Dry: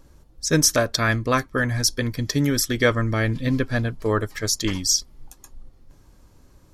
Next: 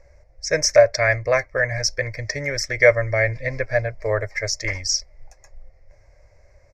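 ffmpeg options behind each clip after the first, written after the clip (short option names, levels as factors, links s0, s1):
-af "firequalizer=gain_entry='entry(100,0);entry(210,-24);entry(590,12);entry(870,-3);entry(1300,-7);entry(2100,13);entry(3100,-22);entry(5200,1);entry(10000,-22)':delay=0.05:min_phase=1"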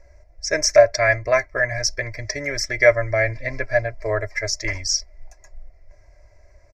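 -af "aecho=1:1:3:0.64,volume=0.891"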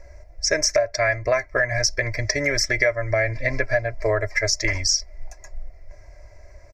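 -af "acompressor=threshold=0.0708:ratio=8,volume=2"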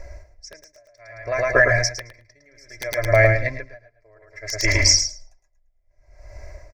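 -filter_complex "[0:a]aeval=exprs='(mod(2.37*val(0)+1,2)-1)/2.37':c=same,asplit=2[s0][s1];[s1]aecho=0:1:109|218|327|436:0.596|0.173|0.0501|0.0145[s2];[s0][s2]amix=inputs=2:normalize=0,aeval=exprs='val(0)*pow(10,-40*(0.5-0.5*cos(2*PI*0.62*n/s))/20)':c=same,volume=2"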